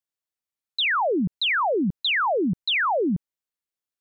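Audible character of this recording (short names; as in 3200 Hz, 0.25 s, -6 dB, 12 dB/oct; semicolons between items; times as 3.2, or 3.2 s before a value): noise floor -92 dBFS; spectral tilt -2.0 dB/oct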